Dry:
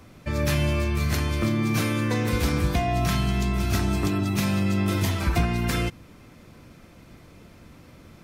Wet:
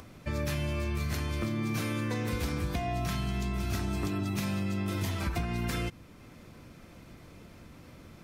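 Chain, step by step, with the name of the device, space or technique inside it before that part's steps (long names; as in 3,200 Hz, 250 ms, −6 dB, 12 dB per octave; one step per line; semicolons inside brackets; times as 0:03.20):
upward and downward compression (upward compression, threshold −41 dBFS; downward compressor, threshold −24 dBFS, peak gain reduction 7 dB)
level −4 dB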